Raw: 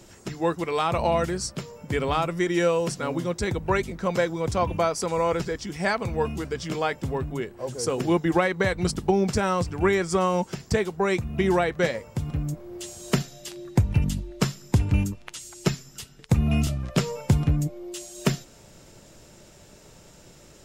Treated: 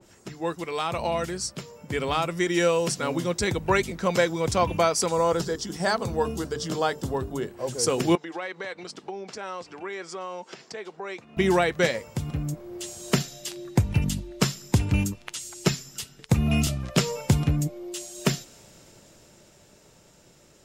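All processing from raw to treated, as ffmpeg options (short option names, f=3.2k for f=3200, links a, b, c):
-filter_complex "[0:a]asettb=1/sr,asplit=3[a][b][c];[a]atrim=end=5.094[d];[b]atrim=start=5.09:end=7.48,asetpts=PTS-STARTPTS,afade=t=in:d=0.004:c=qsin,afade=t=out:st=2.386:d=0.004:c=qsin,equalizer=f=2.3k:t=o:w=0.56:g=-13,bandreject=f=50:t=h:w=6,bandreject=f=100:t=h:w=6,bandreject=f=150:t=h:w=6,bandreject=f=200:t=h:w=6,bandreject=f=250:t=h:w=6,bandreject=f=300:t=h:w=6,bandreject=f=350:t=h:w=6,bandreject=f=400:t=h:w=6,bandreject=f=450:t=h:w=6[e];[c]atrim=start=7.476[f];[d][e]acrossfade=d=0.004:c1=hsin:c2=qsin[g];[g][f]acrossfade=d=0.004:c1=qsin:c2=hsin,asettb=1/sr,asplit=3[h][i][j];[h]atrim=end=8.154[k];[i]atrim=start=8.15:end=11.37,asetpts=PTS-STARTPTS,afade=t=in:d=0.004:c=qsin,afade=t=out:st=3.216:d=0.004:c=qsin,acompressor=threshold=-34dB:ratio=3:attack=3.2:release=140:knee=1:detection=peak,highpass=370,lowpass=5.2k[l];[j]atrim=start=11.366[m];[k][l]acrossfade=d=0.004:c1=hsin:c2=qsin[n];[n][m]acrossfade=d=0.004:c1=qsin:c2=hsin,lowshelf=f=70:g=-8,dynaudnorm=f=270:g=17:m=6.5dB,adynamicequalizer=threshold=0.02:dfrequency=2200:dqfactor=0.7:tfrequency=2200:tqfactor=0.7:attack=5:release=100:ratio=0.375:range=2.5:mode=boostabove:tftype=highshelf,volume=-4.5dB"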